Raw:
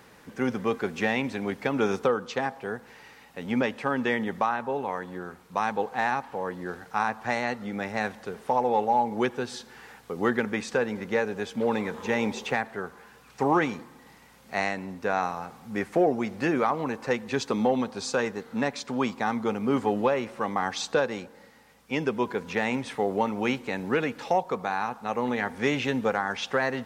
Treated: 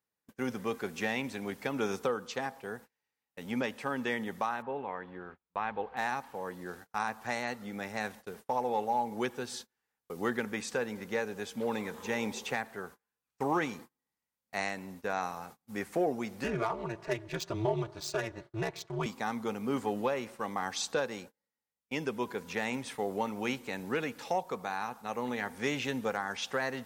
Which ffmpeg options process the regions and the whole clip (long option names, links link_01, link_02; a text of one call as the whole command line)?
ffmpeg -i in.wav -filter_complex "[0:a]asettb=1/sr,asplit=3[link_01][link_02][link_03];[link_01]atrim=end=4.624[link_04];[link_02]atrim=start=4.62:end=5.97,asetpts=PTS-STARTPTS,afade=type=in:duration=0.004:curve=qsin,afade=type=out:start_time=1.346:duration=0.004:curve=qsin,lowpass=frequency=3100:width=0.5412,lowpass=frequency=3100:width=1.3066,asubboost=boost=11.5:cutoff=69[link_05];[link_03]atrim=start=5.966[link_06];[link_04][link_05]acrossfade=duration=0.004:curve1=hsin:curve2=qsin[link_07];[link_07][link_06]acrossfade=duration=0.004:curve1=qsin:curve2=hsin,asettb=1/sr,asplit=3[link_08][link_09][link_10];[link_08]atrim=end=16.444[link_11];[link_09]atrim=start=16.44:end=19.06,asetpts=PTS-STARTPTS,afade=type=in:duration=0.004:curve=qsin,afade=type=out:start_time=2.616:duration=0.004:curve=qsin,aecho=1:1:3.8:0.71,atrim=end_sample=115542,aeval=exprs='val(0)*sin(2*PI*110*n/s)':channel_layout=same,adynamicsmooth=sensitivity=5:basefreq=4000[link_12];[link_10]atrim=start=19.056[link_13];[link_11][link_12]acrossfade=duration=0.004:curve1=hsin:curve2=qsin[link_14];[link_14][link_13]acrossfade=duration=0.004:curve1=qsin:curve2=hsin,agate=range=-33dB:threshold=-41dB:ratio=16:detection=peak,aemphasis=mode=production:type=50kf,volume=-7.5dB" out.wav